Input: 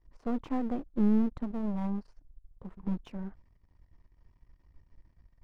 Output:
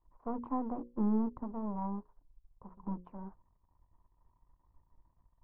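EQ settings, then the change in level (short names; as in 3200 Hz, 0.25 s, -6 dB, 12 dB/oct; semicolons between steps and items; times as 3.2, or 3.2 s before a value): notches 60/120/180/240/300/360/420/480/540 Hz; dynamic EQ 320 Hz, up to +5 dB, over -42 dBFS, Q 1.2; synth low-pass 1000 Hz, resonance Q 4.9; -8.0 dB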